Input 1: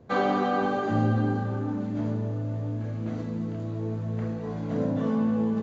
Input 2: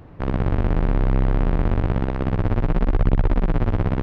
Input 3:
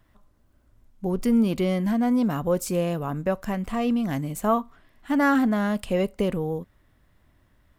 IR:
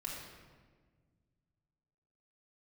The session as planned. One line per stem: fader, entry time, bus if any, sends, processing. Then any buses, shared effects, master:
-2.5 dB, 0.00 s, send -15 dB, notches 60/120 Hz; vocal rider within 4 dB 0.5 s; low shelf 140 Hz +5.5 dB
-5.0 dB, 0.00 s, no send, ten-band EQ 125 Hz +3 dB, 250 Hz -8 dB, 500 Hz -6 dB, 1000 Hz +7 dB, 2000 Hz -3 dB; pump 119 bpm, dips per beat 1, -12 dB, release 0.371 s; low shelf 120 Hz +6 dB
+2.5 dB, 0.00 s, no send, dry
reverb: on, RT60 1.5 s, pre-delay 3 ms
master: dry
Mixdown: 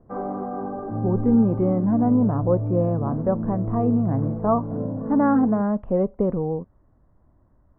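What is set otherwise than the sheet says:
stem 2: muted; master: extra LPF 1100 Hz 24 dB/oct

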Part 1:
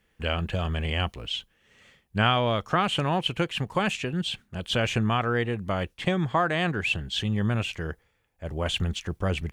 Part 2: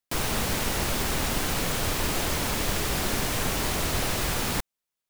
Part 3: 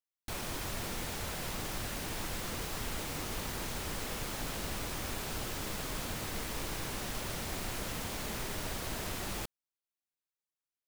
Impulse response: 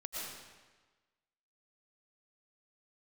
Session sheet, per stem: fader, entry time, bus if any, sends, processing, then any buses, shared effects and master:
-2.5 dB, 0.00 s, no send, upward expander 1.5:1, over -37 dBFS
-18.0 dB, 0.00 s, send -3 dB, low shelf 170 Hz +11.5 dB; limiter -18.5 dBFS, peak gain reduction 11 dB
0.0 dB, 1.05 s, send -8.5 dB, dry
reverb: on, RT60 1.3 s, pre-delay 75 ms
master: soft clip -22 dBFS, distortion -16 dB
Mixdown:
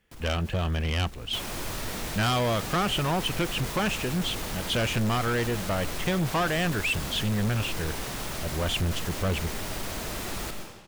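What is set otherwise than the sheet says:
stem 1 -2.5 dB -> +7.0 dB; stem 2: send off; reverb return +8.5 dB

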